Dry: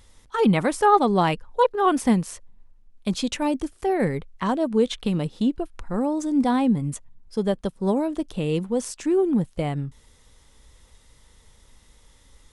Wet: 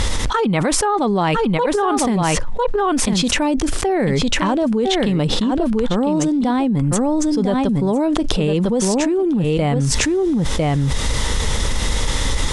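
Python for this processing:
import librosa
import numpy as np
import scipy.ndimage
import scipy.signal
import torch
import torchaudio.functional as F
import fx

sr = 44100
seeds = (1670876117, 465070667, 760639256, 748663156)

y = scipy.signal.sosfilt(scipy.signal.butter(2, 7900.0, 'lowpass', fs=sr, output='sos'), x)
y = y + 10.0 ** (-9.5 / 20.0) * np.pad(y, (int(1003 * sr / 1000.0), 0))[:len(y)]
y = fx.env_flatten(y, sr, amount_pct=100)
y = y * librosa.db_to_amplitude(-4.0)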